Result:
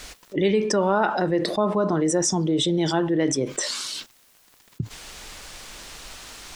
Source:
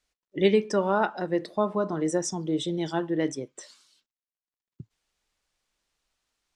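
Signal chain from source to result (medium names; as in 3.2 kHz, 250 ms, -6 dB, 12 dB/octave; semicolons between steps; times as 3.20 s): level flattener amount 70%; trim -1.5 dB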